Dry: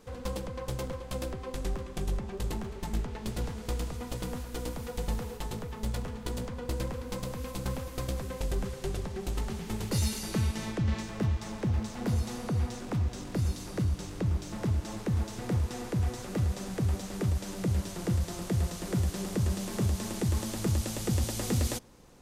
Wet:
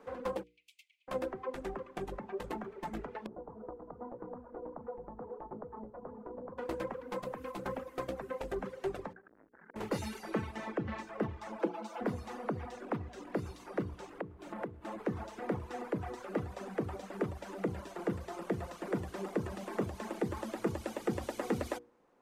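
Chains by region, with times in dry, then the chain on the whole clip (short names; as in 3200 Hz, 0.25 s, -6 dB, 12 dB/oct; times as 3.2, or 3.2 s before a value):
0.43–1.08 steep high-pass 2300 Hz 72 dB/oct + high shelf 3100 Hz -8.5 dB
3.26–6.58 LPF 1100 Hz 24 dB/oct + compressor 3:1, threshold -36 dBFS
9.13–9.76 ladder low-pass 1700 Hz, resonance 75% + core saturation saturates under 720 Hz
11.59–12.01 HPF 240 Hz 24 dB/oct + bell 1900 Hz -9 dB 0.2 oct + comb 6 ms, depth 91%
14.18–15.05 bell 5600 Hz -6 dB 0.64 oct + compressor 5:1, threshold -34 dBFS
whole clip: reverb removal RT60 1.5 s; three-band isolator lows -20 dB, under 240 Hz, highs -18 dB, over 2200 Hz; notches 60/120/180/240/300/360/420/480 Hz; gain +4 dB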